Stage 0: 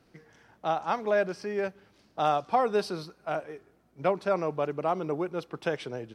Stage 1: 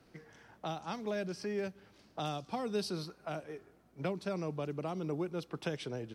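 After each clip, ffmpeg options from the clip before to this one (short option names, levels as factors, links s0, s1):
-filter_complex "[0:a]acrossover=split=300|3000[s0][s1][s2];[s1]acompressor=threshold=0.01:ratio=6[s3];[s0][s3][s2]amix=inputs=3:normalize=0"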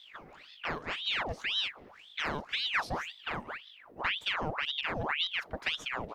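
-af "equalizer=f=6600:w=0.46:g=-10.5,aeval=exprs='val(0)+0.00126*(sin(2*PI*50*n/s)+sin(2*PI*2*50*n/s)/2+sin(2*PI*3*50*n/s)/3+sin(2*PI*4*50*n/s)/4+sin(2*PI*5*50*n/s)/5)':c=same,aeval=exprs='val(0)*sin(2*PI*1900*n/s+1900*0.85/1.9*sin(2*PI*1.9*n/s))':c=same,volume=2.11"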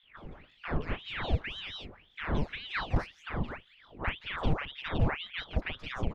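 -filter_complex "[0:a]aemphasis=mode=reproduction:type=riaa,acrossover=split=950|3400[s0][s1][s2];[s0]adelay=30[s3];[s2]adelay=170[s4];[s3][s1][s4]amix=inputs=3:normalize=0,volume=8.91,asoftclip=hard,volume=0.112"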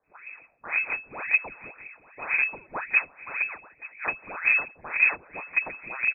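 -filter_complex "[0:a]asplit=2[s0][s1];[s1]acrusher=bits=3:mix=0:aa=0.000001,volume=0.398[s2];[s0][s2]amix=inputs=2:normalize=0,aecho=1:1:882:0.106,lowpass=f=2200:t=q:w=0.5098,lowpass=f=2200:t=q:w=0.6013,lowpass=f=2200:t=q:w=0.9,lowpass=f=2200:t=q:w=2.563,afreqshift=-2600,volume=1.19"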